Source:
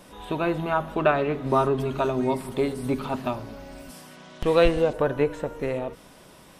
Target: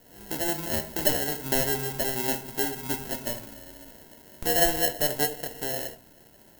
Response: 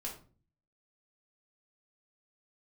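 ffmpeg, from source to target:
-filter_complex "[0:a]acrusher=samples=37:mix=1:aa=0.000001,aemphasis=mode=production:type=50fm,asplit=2[s0][s1];[1:a]atrim=start_sample=2205,lowshelf=f=200:g=-9.5[s2];[s1][s2]afir=irnorm=-1:irlink=0,volume=0.75[s3];[s0][s3]amix=inputs=2:normalize=0,volume=0.335"

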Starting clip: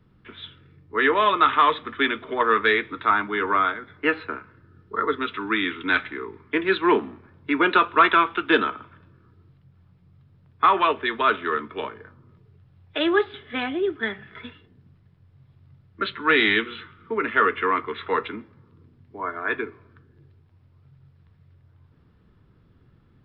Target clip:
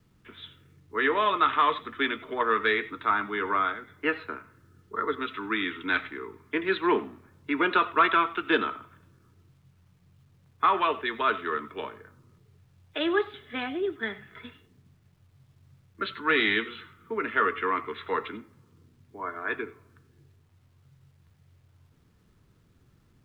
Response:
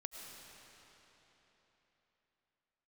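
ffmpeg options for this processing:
-filter_complex "[1:a]atrim=start_sample=2205,atrim=end_sample=4410[s0];[0:a][s0]afir=irnorm=-1:irlink=0,acrusher=bits=11:mix=0:aa=0.000001"

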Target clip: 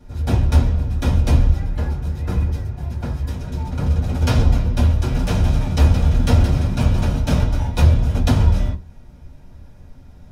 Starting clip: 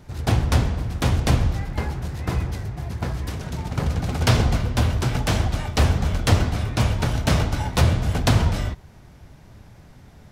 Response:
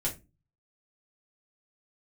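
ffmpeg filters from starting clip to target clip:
-filter_complex "[0:a]asettb=1/sr,asplit=3[s0][s1][s2];[s0]atrim=end=4.904[s3];[s1]atrim=start=4.9:end=7.18,asetpts=PTS-STARTPTS,afade=t=in:d=0.004:c=qsin,afade=t=out:st=2.276:d=0.004:c=qsin,asplit=6[s4][s5][s6][s7][s8][s9];[s5]adelay=171,afreqshift=45,volume=0.422[s10];[s6]adelay=342,afreqshift=90,volume=0.195[s11];[s7]adelay=513,afreqshift=135,volume=0.0891[s12];[s8]adelay=684,afreqshift=180,volume=0.0412[s13];[s9]adelay=855,afreqshift=225,volume=0.0188[s14];[s4][s10][s11][s12][s13][s14]amix=inputs=6:normalize=0,atrim=end_sample=100548[s15];[s2]atrim=start=7.176[s16];[s3][s15]acrossfade=d=0.004:c1=hsin:c2=qsin[s17];[s17][s16]acrossfade=d=0.004:c1=qsin:c2=hsin[s18];[1:a]atrim=start_sample=2205,asetrate=74970,aresample=44100[s19];[s18][s19]afir=irnorm=-1:irlink=0,volume=0.668"

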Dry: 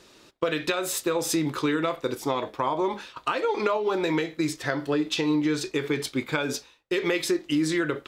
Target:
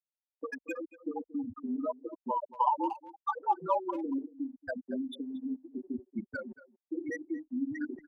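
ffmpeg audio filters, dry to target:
-filter_complex "[0:a]bandreject=f=50:t=h:w=6,bandreject=f=100:t=h:w=6,bandreject=f=150:t=h:w=6,bandreject=f=200:t=h:w=6,bandreject=f=250:t=h:w=6,bandreject=f=300:t=h:w=6,bandreject=f=350:t=h:w=6,afftfilt=real='re*gte(hypot(re,im),0.251)':imag='im*gte(hypot(re,im),0.251)':win_size=1024:overlap=0.75,acrossover=split=270 3700:gain=0.178 1 0.178[s0][s1][s2];[s0][s1][s2]amix=inputs=3:normalize=0,aecho=1:1:1.1:0.95,areverse,acompressor=mode=upward:threshold=0.0141:ratio=2.5,areverse,acrossover=split=530[s3][s4];[s3]aeval=exprs='val(0)*(1-0.5/2+0.5/2*cos(2*PI*1*n/s))':c=same[s5];[s4]aeval=exprs='val(0)*(1-0.5/2-0.5/2*cos(2*PI*1*n/s))':c=same[s6];[s5][s6]amix=inputs=2:normalize=0,acrossover=split=640|1400[s7][s8][s9];[s9]asoftclip=type=tanh:threshold=0.0112[s10];[s7][s8][s10]amix=inputs=3:normalize=0,afreqshift=-41,asplit=2[s11][s12];[s12]adelay=230,highpass=300,lowpass=3400,asoftclip=type=hard:threshold=0.0596,volume=0.141[s13];[s11][s13]amix=inputs=2:normalize=0"

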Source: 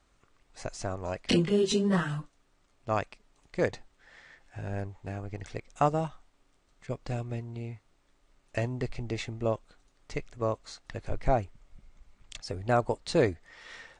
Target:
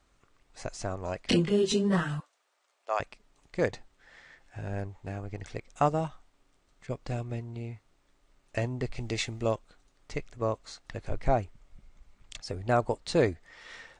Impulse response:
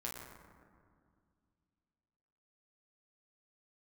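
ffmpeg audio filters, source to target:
-filter_complex "[0:a]asettb=1/sr,asplit=3[s0][s1][s2];[s0]atrim=end=2.204[s3];[s1]atrim=start=2.2:end=3,asetpts=PTS-STARTPTS,afade=t=in:d=0.004:c=qsin,afade=t=out:st=0.796:d=0.004:c=qsin,highpass=f=510:w=0.5412,highpass=f=510:w=1.3066[s4];[s2]atrim=start=2.996[s5];[s3][s4]acrossfade=d=0.004:c1=hsin:c2=qsin[s6];[s6][s5]acrossfade=d=0.004:c1=qsin:c2=hsin,asplit=3[s7][s8][s9];[s7]afade=t=out:st=8.96:d=0.02[s10];[s8]highshelf=f=2400:g=9.5,afade=t=in:st=8.96:d=0.02,afade=t=out:st=9.54:d=0.02[s11];[s9]afade=t=in:st=9.54:d=0.02[s12];[s10][s11][s12]amix=inputs=3:normalize=0"

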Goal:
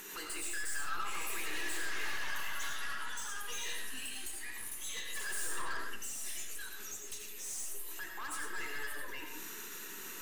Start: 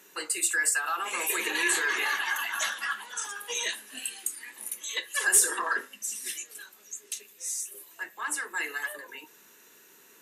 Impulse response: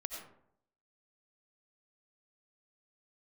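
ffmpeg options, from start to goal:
-filter_complex "[0:a]asplit=2[s0][s1];[s1]acompressor=mode=upward:threshold=0.0316:ratio=2.5,volume=1.26[s2];[s0][s2]amix=inputs=2:normalize=0,equalizer=f=610:w=3.1:g=-12.5,aeval=exprs='(tanh(25.1*val(0)+0.4)-tanh(0.4))/25.1':c=same,alimiter=level_in=2.66:limit=0.0631:level=0:latency=1:release=123,volume=0.376[s3];[1:a]atrim=start_sample=2205[s4];[s3][s4]afir=irnorm=-1:irlink=0,volume=0.891"

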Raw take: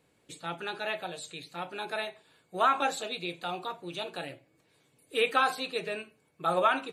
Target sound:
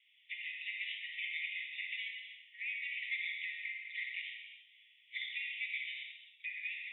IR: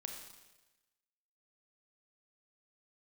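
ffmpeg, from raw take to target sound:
-filter_complex "[0:a]acompressor=threshold=0.00891:ratio=5,afreqshift=-240,crystalizer=i=8.5:c=0,aeval=exprs='val(0)*sin(2*PI*1400*n/s)':c=same,acrusher=bits=9:mix=0:aa=0.000001,asuperpass=centerf=2600:order=20:qfactor=1.6[s0];[1:a]atrim=start_sample=2205,afade=t=out:st=0.3:d=0.01,atrim=end_sample=13671,asetrate=27783,aresample=44100[s1];[s0][s1]afir=irnorm=-1:irlink=0,volume=1.58" -ar 48000 -c:a libopus -b:a 128k

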